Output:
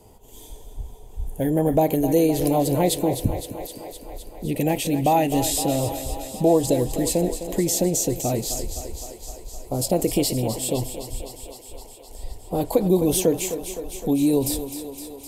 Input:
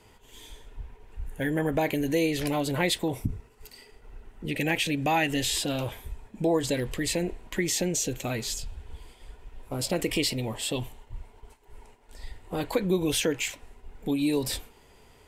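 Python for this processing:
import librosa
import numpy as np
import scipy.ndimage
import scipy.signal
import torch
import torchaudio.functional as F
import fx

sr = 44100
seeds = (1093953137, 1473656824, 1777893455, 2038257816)

p1 = fx.curve_eq(x, sr, hz=(450.0, 720.0, 1600.0, 12000.0), db=(0, 3, -18, 4))
p2 = p1 + fx.echo_thinned(p1, sr, ms=257, feedback_pct=75, hz=220.0, wet_db=-10, dry=0)
y = F.gain(torch.from_numpy(p2), 6.5).numpy()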